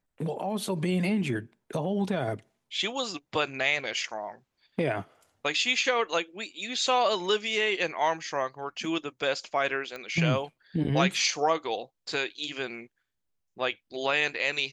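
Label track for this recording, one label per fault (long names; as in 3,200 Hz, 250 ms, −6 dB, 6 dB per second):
9.960000	9.960000	click −24 dBFS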